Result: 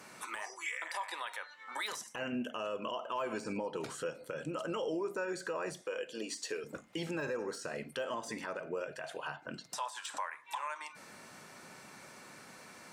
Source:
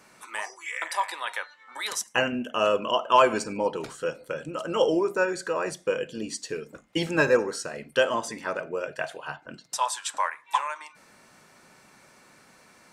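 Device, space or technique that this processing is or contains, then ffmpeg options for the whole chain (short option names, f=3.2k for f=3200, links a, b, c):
podcast mastering chain: -filter_complex "[0:a]asettb=1/sr,asplit=3[a][b][c];[a]atrim=end=5.814[d];[b]atrim=start=5.81:end=6.64,asetpts=PTS-STARTPTS,afade=t=in:d=0.004:c=qsin,afade=t=out:st=0.826:d=0.004:c=qsin,highpass=410[e];[c]atrim=start=6.636[f];[d][e]acrossfade=d=0.004:c1=hsin:c2=qsin[g];[g][f]acrossfade=d=0.004:c1=qsin:c2=hsin,highpass=80,deesser=0.8,acompressor=threshold=-41dB:ratio=2,alimiter=level_in=6.5dB:limit=-24dB:level=0:latency=1:release=83,volume=-6.5dB,volume=3dB" -ar 48000 -c:a libmp3lame -b:a 112k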